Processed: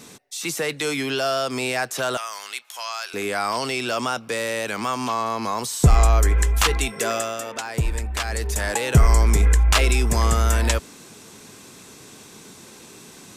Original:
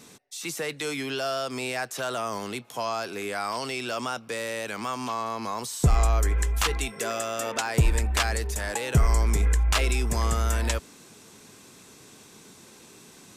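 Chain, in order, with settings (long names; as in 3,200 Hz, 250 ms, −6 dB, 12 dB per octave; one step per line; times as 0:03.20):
0:02.17–0:03.14: high-pass filter 1,500 Hz 12 dB per octave
0:07.14–0:08.56: duck −8 dB, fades 0.31 s
level +6 dB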